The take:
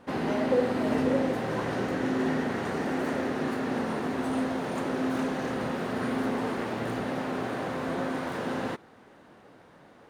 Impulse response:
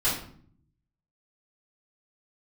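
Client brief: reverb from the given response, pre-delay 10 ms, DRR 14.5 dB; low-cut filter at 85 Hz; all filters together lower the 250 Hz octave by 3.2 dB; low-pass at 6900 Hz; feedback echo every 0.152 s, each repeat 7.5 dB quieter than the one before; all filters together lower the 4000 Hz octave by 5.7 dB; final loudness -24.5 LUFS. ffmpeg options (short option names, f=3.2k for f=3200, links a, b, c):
-filter_complex "[0:a]highpass=85,lowpass=6.9k,equalizer=f=250:t=o:g=-3.5,equalizer=f=4k:t=o:g=-7.5,aecho=1:1:152|304|456|608|760:0.422|0.177|0.0744|0.0312|0.0131,asplit=2[a][b];[1:a]atrim=start_sample=2205,adelay=10[c];[b][c]afir=irnorm=-1:irlink=0,volume=-25.5dB[d];[a][d]amix=inputs=2:normalize=0,volume=6.5dB"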